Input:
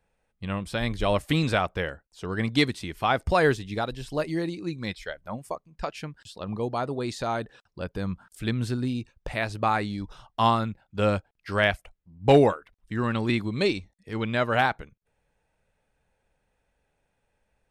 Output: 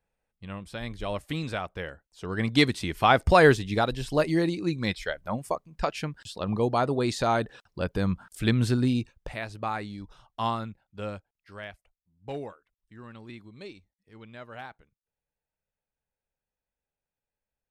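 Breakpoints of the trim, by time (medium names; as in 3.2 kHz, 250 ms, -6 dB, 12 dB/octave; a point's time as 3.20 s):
1.65 s -8 dB
2.88 s +4 dB
8.99 s +4 dB
9.41 s -7 dB
10.65 s -7 dB
11.70 s -19 dB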